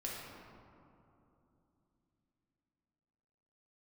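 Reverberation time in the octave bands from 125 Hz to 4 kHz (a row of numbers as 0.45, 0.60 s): 4.2, 4.3, 3.1, 2.8, 1.9, 1.1 s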